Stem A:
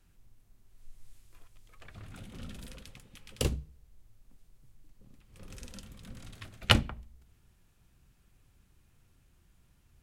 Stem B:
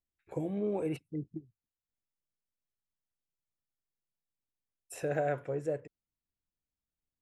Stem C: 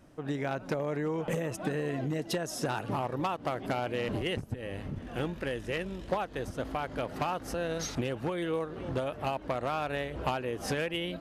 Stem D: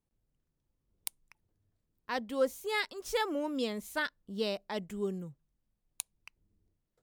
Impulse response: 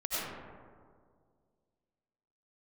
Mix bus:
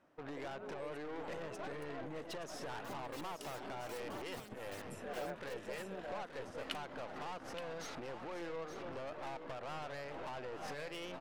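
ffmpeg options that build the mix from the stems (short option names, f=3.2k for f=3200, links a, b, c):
-filter_complex "[0:a]highpass=1.4k,volume=-19dB,asplit=2[a][b];[b]volume=-9.5dB[c];[1:a]highpass=500,volume=-11.5dB,asplit=2[d][e];[e]volume=-3dB[f];[2:a]acompressor=threshold=-32dB:ratio=6,bandpass=f=1.1k:t=q:w=0.62:csg=0,aeval=exprs='(tanh(158*val(0)+0.5)-tanh(0.5))/158':c=same,volume=2.5dB,asplit=2[g][h];[h]volume=-9.5dB[i];[3:a]bandreject=f=2k:w=12,aeval=exprs='(mod(26.6*val(0)+1,2)-1)/26.6':c=same,adelay=750,volume=-19dB[j];[c][f][i]amix=inputs=3:normalize=0,aecho=0:1:873:1[k];[a][d][g][j][k]amix=inputs=5:normalize=0,agate=range=-7dB:threshold=-52dB:ratio=16:detection=peak"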